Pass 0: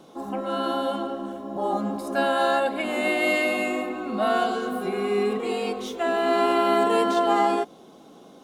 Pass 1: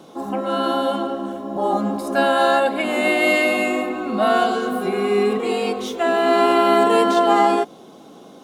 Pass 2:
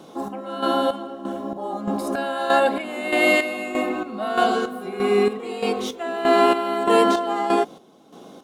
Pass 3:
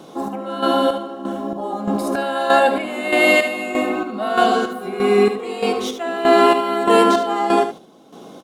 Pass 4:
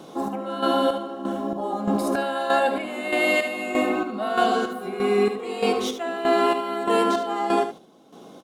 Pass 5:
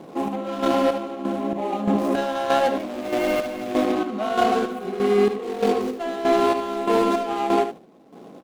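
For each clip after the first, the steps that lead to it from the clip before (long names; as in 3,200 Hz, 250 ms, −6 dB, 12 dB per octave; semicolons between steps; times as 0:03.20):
high-pass filter 56 Hz; level +5.5 dB
square-wave tremolo 1.6 Hz, depth 65%, duty 45%
single-tap delay 74 ms −10 dB; level +3.5 dB
speech leveller within 3 dB 0.5 s; level −5 dB
running median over 25 samples; level +2.5 dB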